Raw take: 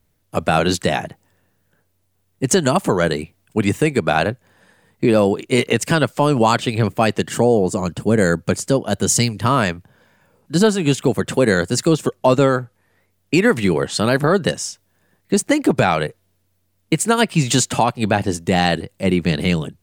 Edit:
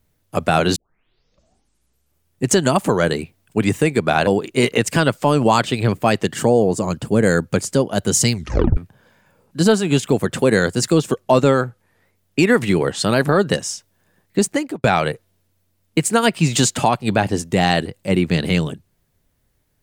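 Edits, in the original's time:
0:00.76: tape start 1.72 s
0:04.27–0:05.22: remove
0:09.28: tape stop 0.44 s
0:15.36–0:15.79: fade out linear

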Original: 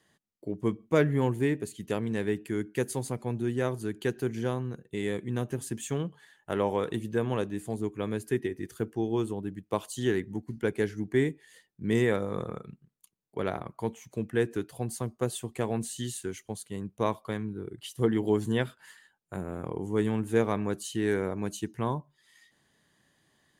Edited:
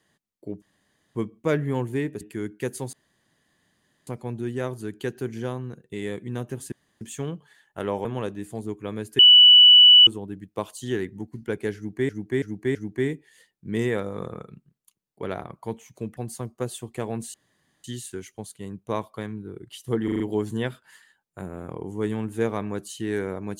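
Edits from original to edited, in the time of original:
0:00.62: splice in room tone 0.53 s
0:01.68–0:02.36: remove
0:03.08: splice in room tone 1.14 s
0:05.73: splice in room tone 0.29 s
0:06.77–0:07.20: remove
0:08.34–0:09.22: beep over 2,960 Hz −8 dBFS
0:10.91–0:11.24: repeat, 4 plays
0:14.33–0:14.78: remove
0:15.95: splice in room tone 0.50 s
0:18.15: stutter 0.04 s, 5 plays

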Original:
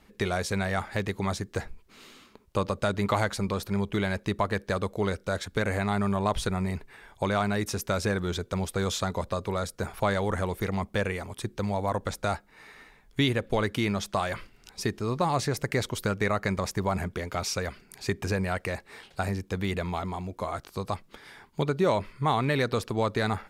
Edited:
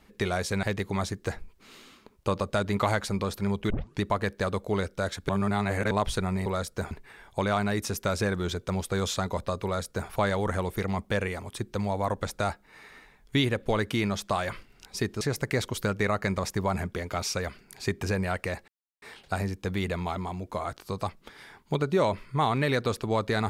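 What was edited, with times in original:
0:00.63–0:00.92: remove
0:03.99: tape start 0.31 s
0:05.58–0:06.20: reverse
0:09.48–0:09.93: duplicate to 0:06.75
0:15.05–0:15.42: remove
0:18.89: splice in silence 0.34 s

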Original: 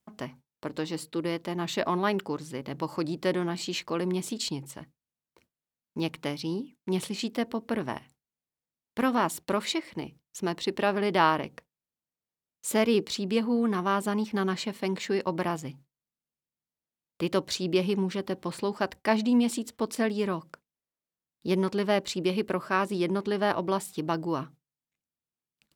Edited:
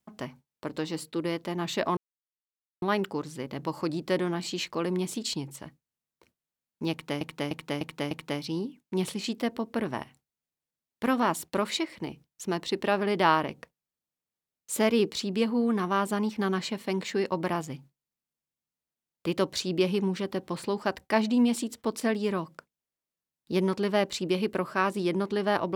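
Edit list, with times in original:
0:01.97: splice in silence 0.85 s
0:06.06–0:06.36: repeat, 5 plays

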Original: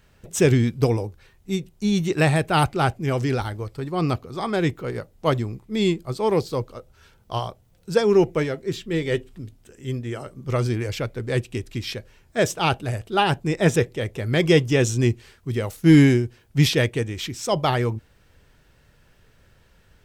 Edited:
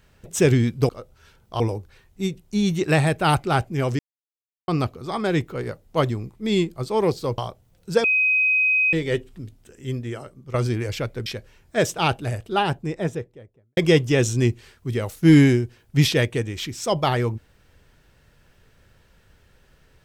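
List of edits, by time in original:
0:03.28–0:03.97: silence
0:06.67–0:07.38: move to 0:00.89
0:08.04–0:08.93: beep over 2,520 Hz −16 dBFS
0:10.05–0:10.54: fade out, to −13 dB
0:11.26–0:11.87: remove
0:12.87–0:14.38: fade out and dull

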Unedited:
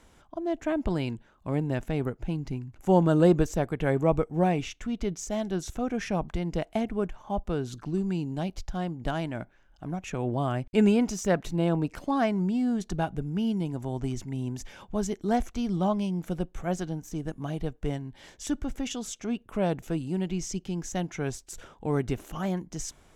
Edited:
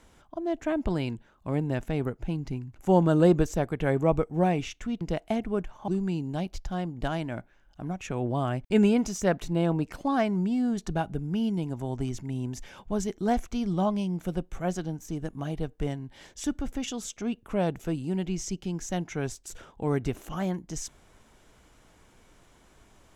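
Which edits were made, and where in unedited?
0:05.01–0:06.46: remove
0:07.33–0:07.91: remove

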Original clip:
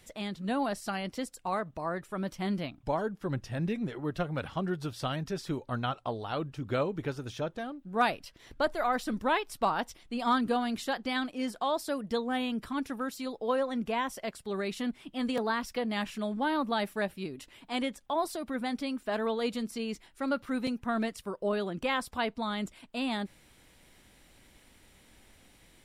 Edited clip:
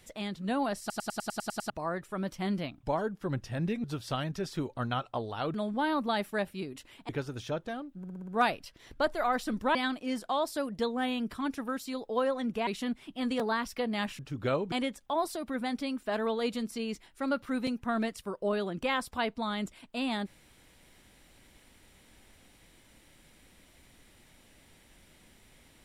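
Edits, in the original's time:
0:00.80: stutter in place 0.10 s, 9 plays
0:03.84–0:04.76: remove
0:06.46–0:06.99: swap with 0:16.17–0:17.72
0:07.88: stutter 0.06 s, 6 plays
0:09.35–0:11.07: remove
0:13.99–0:14.65: remove

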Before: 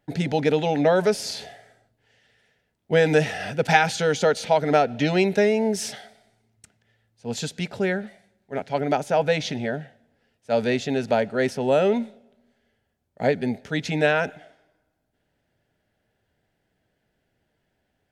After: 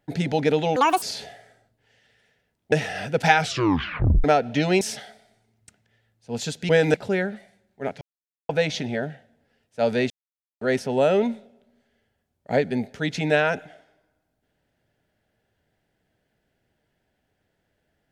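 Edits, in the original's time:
0:00.76–0:01.22: play speed 176%
0:02.92–0:03.17: move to 0:07.65
0:03.83: tape stop 0.86 s
0:05.26–0:05.77: remove
0:08.72–0:09.20: silence
0:10.81–0:11.32: silence

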